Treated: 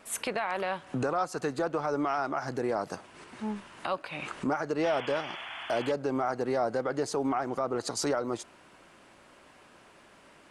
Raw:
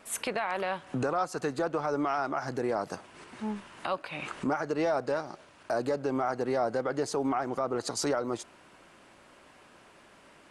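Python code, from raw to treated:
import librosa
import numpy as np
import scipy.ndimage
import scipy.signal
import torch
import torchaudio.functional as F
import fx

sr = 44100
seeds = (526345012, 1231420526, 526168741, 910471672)

y = fx.spec_paint(x, sr, seeds[0], shape='noise', start_s=4.83, length_s=1.09, low_hz=640.0, high_hz=3500.0, level_db=-41.0)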